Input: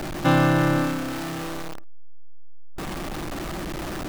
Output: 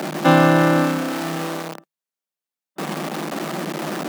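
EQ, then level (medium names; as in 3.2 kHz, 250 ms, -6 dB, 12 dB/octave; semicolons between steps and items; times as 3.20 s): rippled Chebyshev high-pass 150 Hz, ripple 3 dB; +7.5 dB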